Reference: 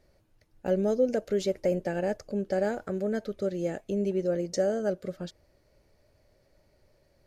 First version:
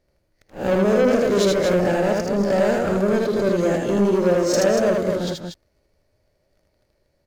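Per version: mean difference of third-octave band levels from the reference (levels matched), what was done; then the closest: 9.0 dB: reverse spectral sustain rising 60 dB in 0.33 s; waveshaping leveller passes 3; loudspeakers at several distances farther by 27 m -2 dB, 81 m -6 dB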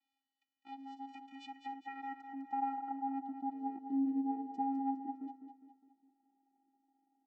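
14.5 dB: vocoder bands 8, square 271 Hz; band-pass sweep 3.2 kHz -> 480 Hz, 1.10–3.82 s; feedback delay 204 ms, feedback 45%, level -8.5 dB; trim +3.5 dB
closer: first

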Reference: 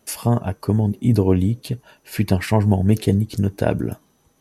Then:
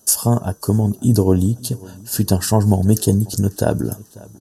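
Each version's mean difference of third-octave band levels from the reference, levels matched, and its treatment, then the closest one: 4.5 dB: Butterworth band-stop 2.2 kHz, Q 2; resonant high shelf 4.5 kHz +10.5 dB, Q 1.5; on a send: feedback delay 544 ms, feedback 47%, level -23 dB; on the sum: trim +2 dB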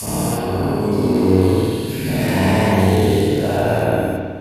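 12.5 dB: every event in the spectrogram widened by 480 ms; tone controls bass -3 dB, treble +6 dB; spring tank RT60 1.6 s, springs 53 ms, chirp 60 ms, DRR -7.5 dB; trim -11.5 dB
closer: first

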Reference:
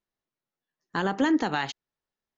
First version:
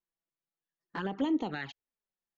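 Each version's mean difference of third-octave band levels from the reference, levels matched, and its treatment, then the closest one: 3.0 dB: low-pass 3.8 kHz 12 dB/octave; touch-sensitive flanger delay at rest 6 ms, full sweep at -21 dBFS; trim -5.5 dB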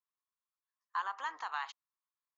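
9.0 dB: octave divider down 1 oct, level -2 dB; ladder high-pass 1 kHz, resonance 75%; trim -2 dB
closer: first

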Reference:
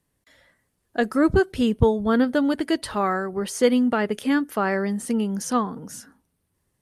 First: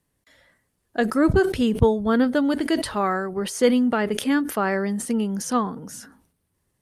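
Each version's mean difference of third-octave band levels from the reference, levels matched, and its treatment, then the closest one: 1.5 dB: decay stretcher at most 98 dB/s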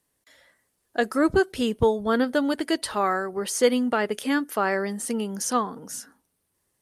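3.0 dB: tone controls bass -9 dB, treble +4 dB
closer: first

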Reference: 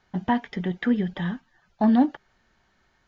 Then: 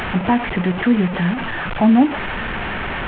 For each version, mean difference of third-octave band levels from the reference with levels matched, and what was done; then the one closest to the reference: 6.5 dB: one-bit delta coder 16 kbps, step -27.5 dBFS; in parallel at +1 dB: peak limiter -20.5 dBFS, peak gain reduction 11.5 dB; on the sum: trim +3 dB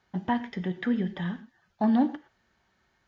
1.5 dB: high-pass 46 Hz; gated-style reverb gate 140 ms flat, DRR 12 dB; trim -4 dB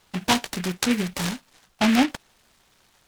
11.0 dB: peaking EQ 2.5 kHz +10.5 dB 2.9 oct; delay time shaken by noise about 2 kHz, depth 0.16 ms; trim -1.5 dB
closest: second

